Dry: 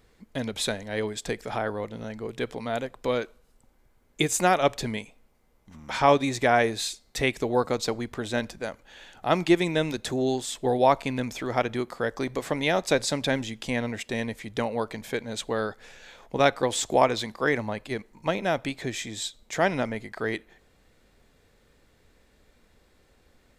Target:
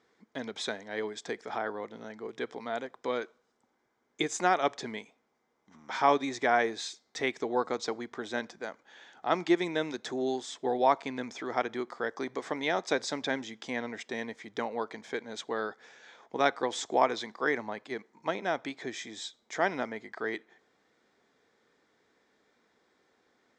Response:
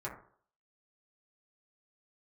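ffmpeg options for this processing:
-af "highpass=300,equalizer=f=560:t=q:w=4:g=-6,equalizer=f=2700:t=q:w=4:g=-9,equalizer=f=4300:t=q:w=4:g=-6,lowpass=f=6200:w=0.5412,lowpass=f=6200:w=1.3066,volume=0.75"

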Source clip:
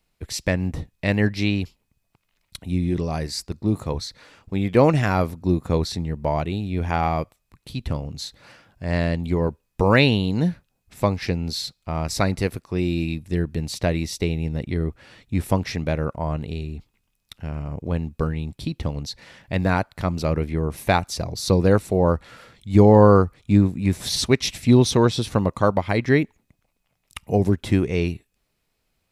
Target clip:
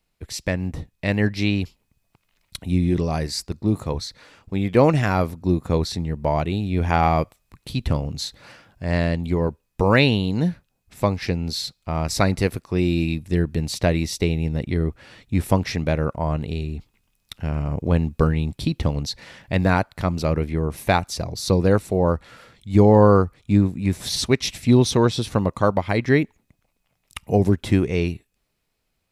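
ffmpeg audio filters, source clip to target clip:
-af "dynaudnorm=f=300:g=11:m=3.76,volume=0.794"

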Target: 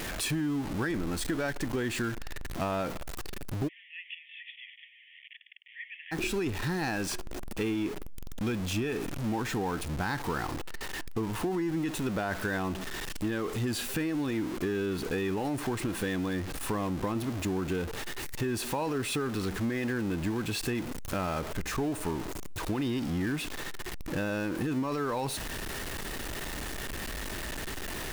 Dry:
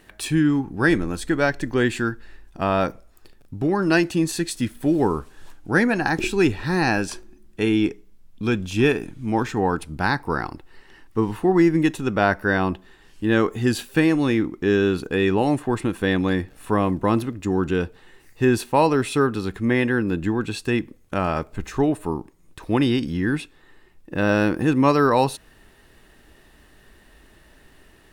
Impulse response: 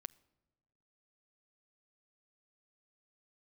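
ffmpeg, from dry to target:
-filter_complex "[0:a]aeval=exprs='val(0)+0.5*0.0596*sgn(val(0))':c=same,alimiter=limit=0.266:level=0:latency=1:release=12,acompressor=threshold=0.0891:ratio=6,asplit=3[s0][s1][s2];[s0]afade=t=out:st=3.67:d=0.02[s3];[s1]asuperpass=centerf=2500:order=20:qfactor=1.6,afade=t=in:st=3.67:d=0.02,afade=t=out:st=6.11:d=0.02[s4];[s2]afade=t=in:st=6.11:d=0.02[s5];[s3][s4][s5]amix=inputs=3:normalize=0,volume=0.473"

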